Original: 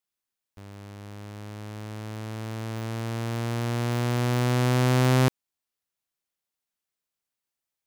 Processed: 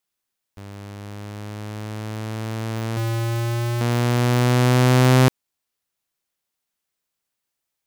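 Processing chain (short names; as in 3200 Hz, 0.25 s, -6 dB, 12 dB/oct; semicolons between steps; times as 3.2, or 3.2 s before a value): 2.97–3.81 infinite clipping; gain +6 dB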